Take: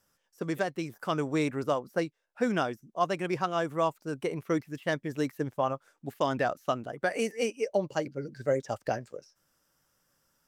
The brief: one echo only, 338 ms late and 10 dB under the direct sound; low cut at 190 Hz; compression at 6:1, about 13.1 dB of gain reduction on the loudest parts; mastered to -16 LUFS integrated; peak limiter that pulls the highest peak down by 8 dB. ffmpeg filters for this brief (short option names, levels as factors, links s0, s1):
-af "highpass=190,acompressor=threshold=0.0141:ratio=6,alimiter=level_in=2.11:limit=0.0631:level=0:latency=1,volume=0.473,aecho=1:1:338:0.316,volume=23.7"